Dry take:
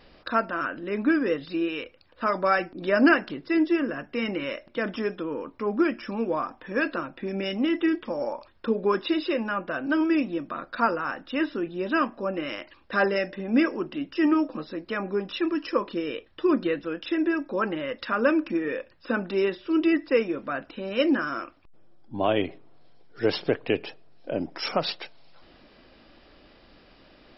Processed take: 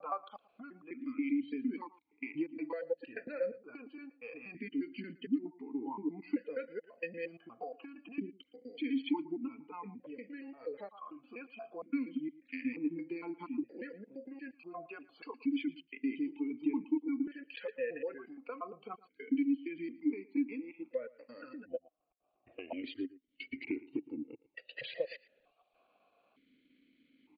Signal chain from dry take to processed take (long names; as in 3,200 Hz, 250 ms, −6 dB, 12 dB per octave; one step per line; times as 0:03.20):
slices reordered back to front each 117 ms, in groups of 5
noise gate with hold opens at −51 dBFS
noise reduction from a noise print of the clip's start 14 dB
downward compressor 5 to 1, threshold −38 dBFS, peak gain reduction 20.5 dB
pitch shifter −2.5 semitones
single-tap delay 114 ms −19.5 dB
formant filter that steps through the vowels 1.1 Hz
level +10 dB